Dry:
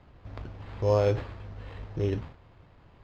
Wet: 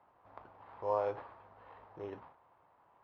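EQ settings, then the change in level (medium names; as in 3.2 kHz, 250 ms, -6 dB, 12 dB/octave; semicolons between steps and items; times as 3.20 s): band-pass filter 920 Hz, Q 2.4; 0.0 dB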